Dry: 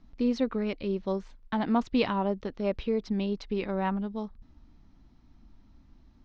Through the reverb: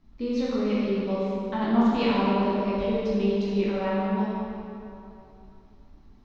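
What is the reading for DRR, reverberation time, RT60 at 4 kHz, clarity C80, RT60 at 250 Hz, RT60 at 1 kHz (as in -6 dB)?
-8.5 dB, 2.9 s, 2.0 s, -2.0 dB, 2.7 s, 2.9 s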